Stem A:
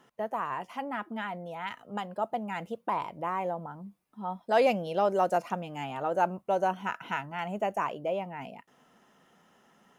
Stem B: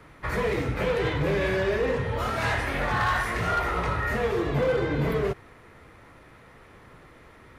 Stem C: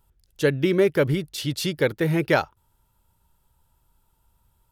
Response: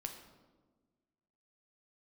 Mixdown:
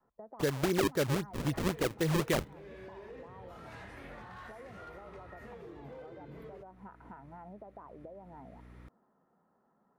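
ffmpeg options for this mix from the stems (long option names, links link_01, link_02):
-filter_complex "[0:a]lowpass=frequency=1300:width=0.5412,lowpass=frequency=1300:width=1.3066,acompressor=threshold=-32dB:ratio=12,volume=-9dB,asplit=2[link_01][link_02];[1:a]aeval=exprs='val(0)+0.00891*(sin(2*PI*60*n/s)+sin(2*PI*2*60*n/s)/2+sin(2*PI*3*60*n/s)/3+sin(2*PI*4*60*n/s)/4+sin(2*PI*5*60*n/s)/5)':channel_layout=same,adelay=1300,volume=-5dB[link_03];[2:a]agate=range=-21dB:threshold=-51dB:ratio=16:detection=peak,acrusher=samples=36:mix=1:aa=0.000001:lfo=1:lforange=57.6:lforate=3.8,volume=-4.5dB[link_04];[link_02]apad=whole_len=391791[link_05];[link_03][link_05]sidechaincompress=threshold=-54dB:ratio=4:attack=16:release=1100[link_06];[link_01][link_06]amix=inputs=2:normalize=0,adynamicequalizer=threshold=0.002:dfrequency=310:dqfactor=0.72:tfrequency=310:tqfactor=0.72:attack=5:release=100:ratio=0.375:range=2.5:mode=boostabove:tftype=bell,acompressor=threshold=-46dB:ratio=6,volume=0dB[link_07];[link_04][link_07]amix=inputs=2:normalize=0,alimiter=limit=-20.5dB:level=0:latency=1:release=386"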